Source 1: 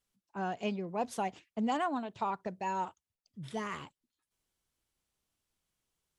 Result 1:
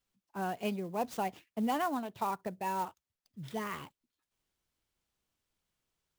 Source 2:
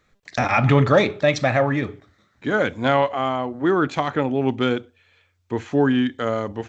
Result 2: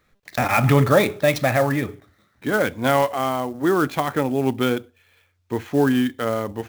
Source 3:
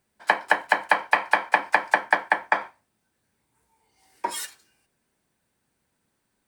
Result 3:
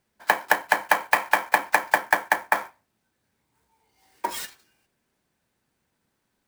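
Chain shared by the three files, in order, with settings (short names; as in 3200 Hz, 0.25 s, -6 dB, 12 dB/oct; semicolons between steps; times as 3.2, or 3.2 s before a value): clock jitter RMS 0.021 ms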